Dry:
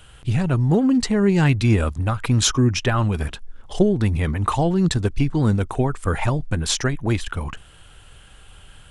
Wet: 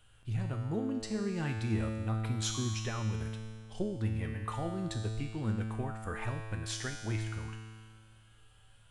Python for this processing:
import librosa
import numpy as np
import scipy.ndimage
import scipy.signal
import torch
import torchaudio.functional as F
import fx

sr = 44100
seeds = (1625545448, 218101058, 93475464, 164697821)

y = fx.peak_eq(x, sr, hz=1800.0, db=5.5, octaves=0.59, at=(5.2, 7.23))
y = fx.comb_fb(y, sr, f0_hz=110.0, decay_s=1.9, harmonics='all', damping=0.0, mix_pct=90)